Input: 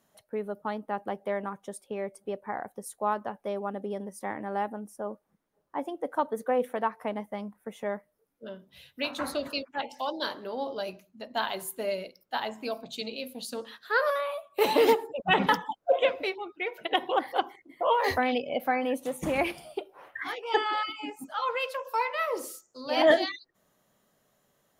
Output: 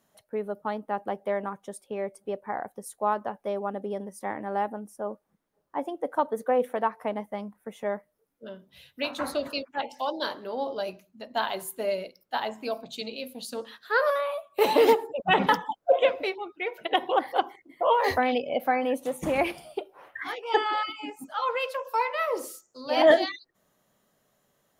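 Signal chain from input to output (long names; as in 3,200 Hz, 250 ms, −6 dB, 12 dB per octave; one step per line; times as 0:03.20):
dynamic equaliser 640 Hz, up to +3 dB, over −36 dBFS, Q 0.74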